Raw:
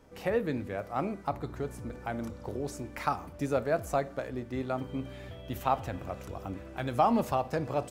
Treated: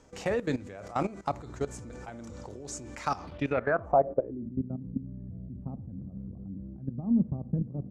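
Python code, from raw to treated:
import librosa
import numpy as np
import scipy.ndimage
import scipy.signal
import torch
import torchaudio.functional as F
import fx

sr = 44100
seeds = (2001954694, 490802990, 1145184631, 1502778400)

y = fx.level_steps(x, sr, step_db=16)
y = fx.filter_sweep_lowpass(y, sr, from_hz=7100.0, to_hz=200.0, start_s=3.07, end_s=4.53, q=3.4)
y = y * librosa.db_to_amplitude(5.0)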